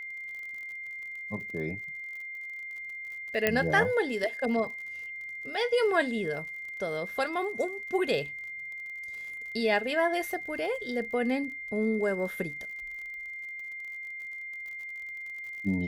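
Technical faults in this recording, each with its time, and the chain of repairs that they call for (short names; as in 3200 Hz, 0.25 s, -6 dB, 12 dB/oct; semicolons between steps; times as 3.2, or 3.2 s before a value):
crackle 48/s -40 dBFS
tone 2100 Hz -37 dBFS
3.47 pop -10 dBFS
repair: de-click; notch 2100 Hz, Q 30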